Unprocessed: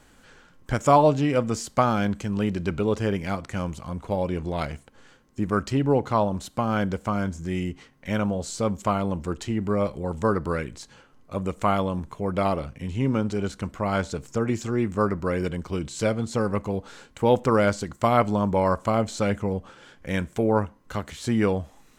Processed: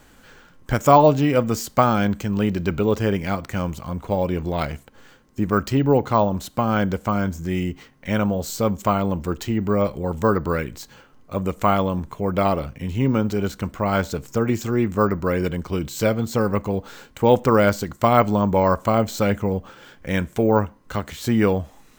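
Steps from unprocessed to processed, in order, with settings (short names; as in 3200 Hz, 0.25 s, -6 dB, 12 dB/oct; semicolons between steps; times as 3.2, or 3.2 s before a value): careless resampling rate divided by 2×, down none, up hold; gain +4 dB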